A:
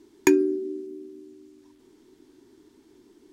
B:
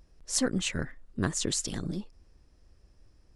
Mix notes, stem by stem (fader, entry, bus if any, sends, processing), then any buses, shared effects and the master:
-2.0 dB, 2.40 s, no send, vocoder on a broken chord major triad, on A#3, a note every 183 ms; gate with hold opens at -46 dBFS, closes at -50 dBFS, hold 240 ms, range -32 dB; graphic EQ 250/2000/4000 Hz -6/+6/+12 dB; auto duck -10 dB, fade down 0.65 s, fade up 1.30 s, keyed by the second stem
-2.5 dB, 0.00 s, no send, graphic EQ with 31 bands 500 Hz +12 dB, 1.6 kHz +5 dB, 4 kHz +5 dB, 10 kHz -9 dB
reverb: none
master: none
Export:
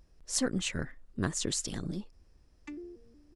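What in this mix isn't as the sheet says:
stem A -2.0 dB -> -10.5 dB; stem B: missing graphic EQ with 31 bands 500 Hz +12 dB, 1.6 kHz +5 dB, 4 kHz +5 dB, 10 kHz -9 dB

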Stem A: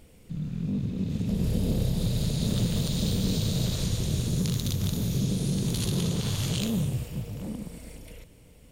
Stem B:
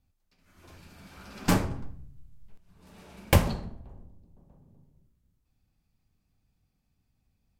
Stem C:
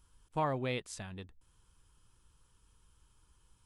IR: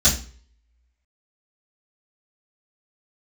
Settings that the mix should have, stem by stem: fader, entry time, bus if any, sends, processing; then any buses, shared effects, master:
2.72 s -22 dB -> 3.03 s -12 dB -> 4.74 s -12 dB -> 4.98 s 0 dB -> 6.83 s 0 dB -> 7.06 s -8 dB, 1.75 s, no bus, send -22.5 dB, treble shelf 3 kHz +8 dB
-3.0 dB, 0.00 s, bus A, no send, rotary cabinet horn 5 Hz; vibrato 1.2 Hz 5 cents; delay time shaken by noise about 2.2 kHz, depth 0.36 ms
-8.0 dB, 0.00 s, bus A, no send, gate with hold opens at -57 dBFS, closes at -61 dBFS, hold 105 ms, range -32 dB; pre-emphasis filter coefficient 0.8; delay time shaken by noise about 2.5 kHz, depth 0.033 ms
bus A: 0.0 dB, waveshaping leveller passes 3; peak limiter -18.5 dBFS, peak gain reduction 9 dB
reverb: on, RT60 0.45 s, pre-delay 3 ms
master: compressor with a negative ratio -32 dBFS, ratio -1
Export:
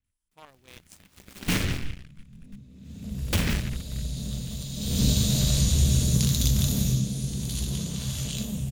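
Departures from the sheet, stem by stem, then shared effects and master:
stem C: missing delay time shaken by noise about 2.5 kHz, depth 0.033 ms; master: missing compressor with a negative ratio -32 dBFS, ratio -1

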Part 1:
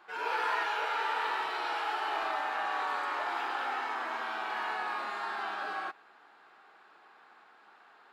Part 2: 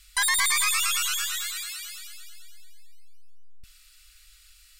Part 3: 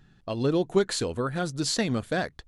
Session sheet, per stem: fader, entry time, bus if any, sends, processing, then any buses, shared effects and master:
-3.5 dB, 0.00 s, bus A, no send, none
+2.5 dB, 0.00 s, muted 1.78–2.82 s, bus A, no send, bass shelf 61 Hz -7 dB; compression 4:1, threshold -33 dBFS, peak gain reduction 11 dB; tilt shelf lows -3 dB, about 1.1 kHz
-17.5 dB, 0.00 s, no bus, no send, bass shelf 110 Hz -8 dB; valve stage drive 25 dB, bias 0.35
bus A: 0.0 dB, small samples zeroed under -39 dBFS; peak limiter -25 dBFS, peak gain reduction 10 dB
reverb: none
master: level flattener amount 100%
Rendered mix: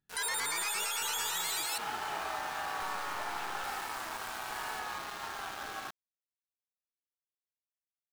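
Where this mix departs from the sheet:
stem 3 -17.5 dB -> -25.5 dB; master: missing level flattener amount 100%

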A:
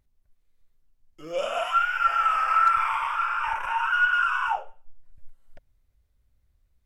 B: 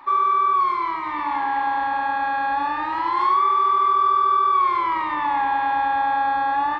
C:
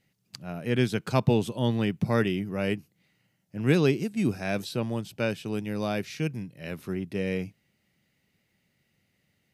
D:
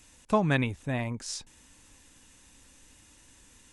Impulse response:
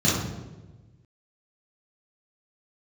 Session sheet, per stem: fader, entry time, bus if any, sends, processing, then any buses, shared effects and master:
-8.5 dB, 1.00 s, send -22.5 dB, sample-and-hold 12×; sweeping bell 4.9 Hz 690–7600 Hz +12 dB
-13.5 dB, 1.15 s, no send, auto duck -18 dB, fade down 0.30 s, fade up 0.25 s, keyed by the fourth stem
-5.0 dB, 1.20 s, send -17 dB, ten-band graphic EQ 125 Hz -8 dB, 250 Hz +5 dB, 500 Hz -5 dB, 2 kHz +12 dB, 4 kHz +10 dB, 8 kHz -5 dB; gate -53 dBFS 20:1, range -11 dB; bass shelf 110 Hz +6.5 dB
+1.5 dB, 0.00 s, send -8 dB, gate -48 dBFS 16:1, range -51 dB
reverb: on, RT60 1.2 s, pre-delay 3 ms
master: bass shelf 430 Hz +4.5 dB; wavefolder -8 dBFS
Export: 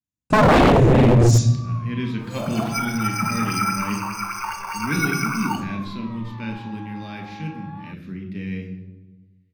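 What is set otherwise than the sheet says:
stem B -13.5 dB -> -21.0 dB; stem C -5.0 dB -> -15.0 dB

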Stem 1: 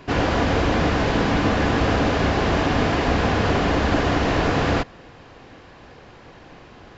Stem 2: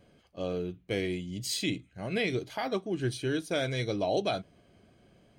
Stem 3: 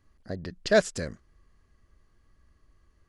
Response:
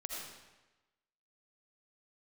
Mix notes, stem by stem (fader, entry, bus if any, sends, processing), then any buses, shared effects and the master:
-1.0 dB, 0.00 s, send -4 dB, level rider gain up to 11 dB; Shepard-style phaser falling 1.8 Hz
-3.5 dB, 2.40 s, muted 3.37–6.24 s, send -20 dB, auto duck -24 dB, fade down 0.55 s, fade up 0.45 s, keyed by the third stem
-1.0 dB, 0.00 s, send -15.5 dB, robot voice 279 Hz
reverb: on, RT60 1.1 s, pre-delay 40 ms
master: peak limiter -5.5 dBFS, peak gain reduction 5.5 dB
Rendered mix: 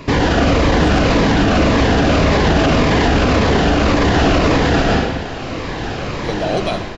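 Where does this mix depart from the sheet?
stem 1 -1.0 dB -> +5.5 dB; stem 2 -3.5 dB -> +7.5 dB; reverb return +7.5 dB

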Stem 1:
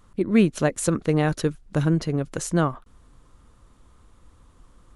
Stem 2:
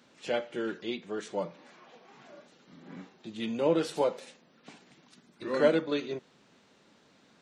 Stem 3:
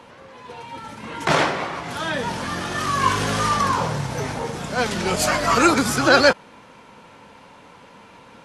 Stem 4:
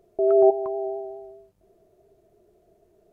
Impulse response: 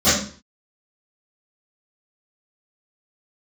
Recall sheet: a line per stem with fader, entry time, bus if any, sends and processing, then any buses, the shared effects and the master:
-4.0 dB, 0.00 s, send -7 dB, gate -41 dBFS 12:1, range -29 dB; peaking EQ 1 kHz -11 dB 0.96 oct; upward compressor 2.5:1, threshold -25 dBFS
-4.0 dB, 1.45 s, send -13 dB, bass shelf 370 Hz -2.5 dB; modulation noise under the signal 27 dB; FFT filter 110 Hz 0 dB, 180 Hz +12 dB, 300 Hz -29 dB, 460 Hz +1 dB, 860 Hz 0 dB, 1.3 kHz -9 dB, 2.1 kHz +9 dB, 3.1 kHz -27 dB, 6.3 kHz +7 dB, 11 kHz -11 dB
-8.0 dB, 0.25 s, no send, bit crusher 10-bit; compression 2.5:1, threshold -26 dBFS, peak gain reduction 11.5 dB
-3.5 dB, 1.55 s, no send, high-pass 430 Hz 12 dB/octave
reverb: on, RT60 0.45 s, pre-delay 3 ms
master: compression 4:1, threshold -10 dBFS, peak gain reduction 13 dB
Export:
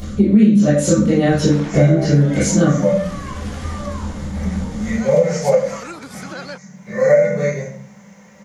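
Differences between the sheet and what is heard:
stem 1: missing gate -41 dBFS 12:1, range -29 dB; stem 2: send -13 dB -> -5 dB

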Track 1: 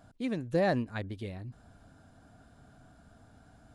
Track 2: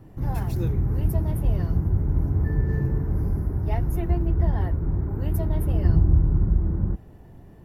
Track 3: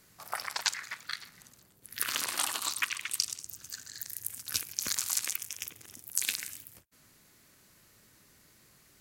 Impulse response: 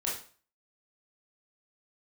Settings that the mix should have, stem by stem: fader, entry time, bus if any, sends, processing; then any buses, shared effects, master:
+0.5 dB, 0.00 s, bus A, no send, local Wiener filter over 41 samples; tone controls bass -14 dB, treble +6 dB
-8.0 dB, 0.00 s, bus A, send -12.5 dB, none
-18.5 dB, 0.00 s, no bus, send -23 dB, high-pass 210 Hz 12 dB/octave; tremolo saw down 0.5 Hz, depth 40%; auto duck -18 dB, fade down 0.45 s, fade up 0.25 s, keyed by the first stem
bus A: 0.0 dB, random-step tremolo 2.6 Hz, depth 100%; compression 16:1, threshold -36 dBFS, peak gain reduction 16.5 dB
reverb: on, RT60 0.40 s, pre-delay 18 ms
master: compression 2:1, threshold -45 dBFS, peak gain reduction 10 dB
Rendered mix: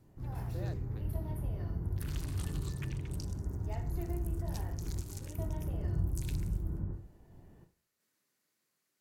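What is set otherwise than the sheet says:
stem 1 +0.5 dB -> -9.0 dB; master: missing compression 2:1, threshold -45 dBFS, peak gain reduction 10 dB

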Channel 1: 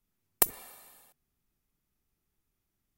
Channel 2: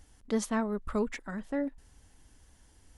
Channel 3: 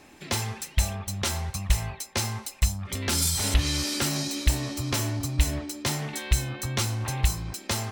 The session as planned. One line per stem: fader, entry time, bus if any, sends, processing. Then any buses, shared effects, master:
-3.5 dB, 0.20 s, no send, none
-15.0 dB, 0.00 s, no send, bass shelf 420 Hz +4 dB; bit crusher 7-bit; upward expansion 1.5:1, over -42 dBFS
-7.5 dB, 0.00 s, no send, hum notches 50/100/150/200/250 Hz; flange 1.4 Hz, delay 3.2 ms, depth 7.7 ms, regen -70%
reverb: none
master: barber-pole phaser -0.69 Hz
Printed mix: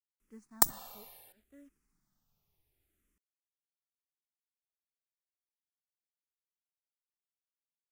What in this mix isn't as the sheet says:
stem 1 -3.5 dB -> +4.0 dB; stem 2 -15.0 dB -> -24.5 dB; stem 3: muted

